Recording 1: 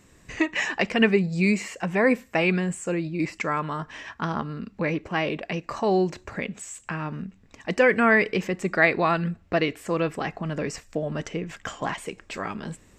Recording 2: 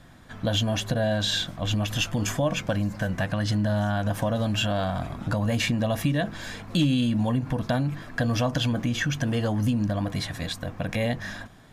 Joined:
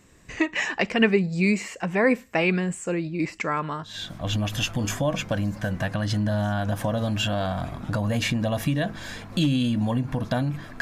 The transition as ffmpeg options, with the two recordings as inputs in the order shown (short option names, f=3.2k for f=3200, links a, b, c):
-filter_complex "[0:a]apad=whole_dur=10.81,atrim=end=10.81,atrim=end=4.15,asetpts=PTS-STARTPTS[a];[1:a]atrim=start=1.11:end=8.19,asetpts=PTS-STARTPTS[b];[a][b]acrossfade=d=0.42:c1=qua:c2=qua"